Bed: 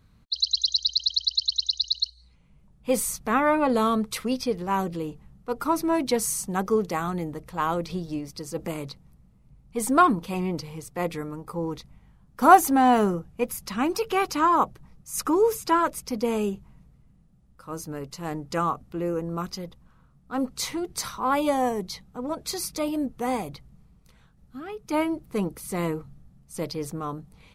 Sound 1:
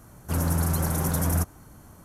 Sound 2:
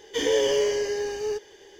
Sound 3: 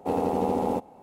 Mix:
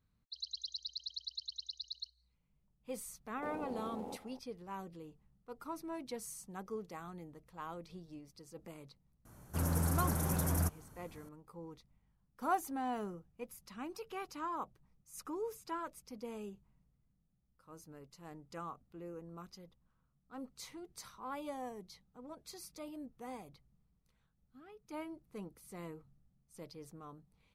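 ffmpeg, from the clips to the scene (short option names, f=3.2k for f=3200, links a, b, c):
-filter_complex "[0:a]volume=-19.5dB[a];[3:a]acompressor=threshold=-33dB:ratio=6:attack=3.2:release=140:knee=1:detection=peak,atrim=end=1.02,asetpts=PTS-STARTPTS,volume=-8.5dB,afade=t=in:d=0.004:c=hsin,afade=t=out:st=1.016:d=0.004:c=hsin,adelay=148617S[b];[1:a]atrim=end=2.04,asetpts=PTS-STARTPTS,volume=-8.5dB,afade=t=in:d=0.004:c=hsin,afade=t=out:st=2.036:d=0.004:c=hsin,adelay=9250[c];[a][b][c]amix=inputs=3:normalize=0"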